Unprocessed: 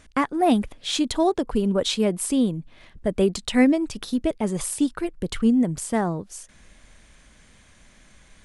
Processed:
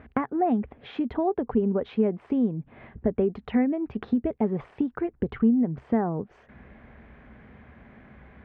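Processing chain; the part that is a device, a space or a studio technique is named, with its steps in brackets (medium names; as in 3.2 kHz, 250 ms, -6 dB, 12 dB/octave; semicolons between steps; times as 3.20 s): bass amplifier (compression 4:1, threshold -32 dBFS, peak gain reduction 16.5 dB; cabinet simulation 61–2100 Hz, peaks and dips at 67 Hz +9 dB, 130 Hz +7 dB, 230 Hz +8 dB, 420 Hz +8 dB, 760 Hz +6 dB); trim +3.5 dB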